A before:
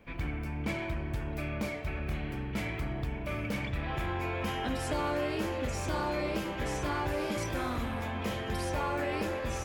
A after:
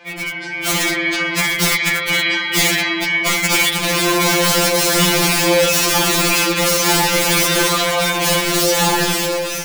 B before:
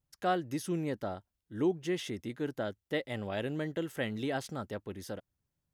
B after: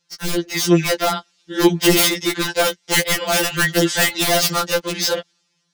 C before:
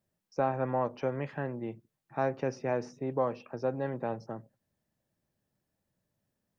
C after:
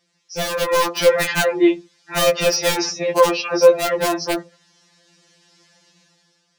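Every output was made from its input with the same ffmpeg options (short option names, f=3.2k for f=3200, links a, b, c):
-filter_complex "[0:a]apsyclip=27.5dB,lowpass=f=5.5k:w=0.5412,lowpass=f=5.5k:w=1.3066,aderivative,asplit=2[a][b];[b]acompressor=threshold=-33dB:ratio=6,volume=2dB[c];[a][c]amix=inputs=2:normalize=0,aeval=exprs='(mod(5.62*val(0)+1,2)-1)/5.62':c=same,lowshelf=f=390:g=11,acrossover=split=100[d][e];[d]aeval=exprs='sgn(val(0))*max(abs(val(0))-0.00112,0)':c=same[f];[e]dynaudnorm=f=120:g=11:m=11.5dB[g];[f][g]amix=inputs=2:normalize=0,afftfilt=real='re*2.83*eq(mod(b,8),0)':imag='im*2.83*eq(mod(b,8),0)':win_size=2048:overlap=0.75,volume=-1dB"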